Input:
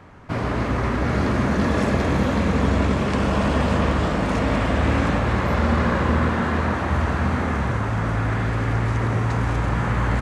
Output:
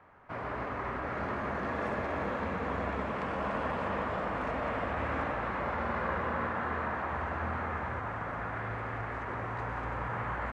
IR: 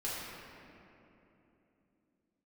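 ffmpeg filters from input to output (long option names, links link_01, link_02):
-filter_complex "[0:a]acrossover=split=490 2400:gain=0.251 1 0.141[link_01][link_02][link_03];[link_01][link_02][link_03]amix=inputs=3:normalize=0,atempo=0.97,asplit=2[link_04][link_05];[1:a]atrim=start_sample=2205,adelay=120[link_06];[link_05][link_06]afir=irnorm=-1:irlink=0,volume=-10.5dB[link_07];[link_04][link_07]amix=inputs=2:normalize=0,volume=-8dB"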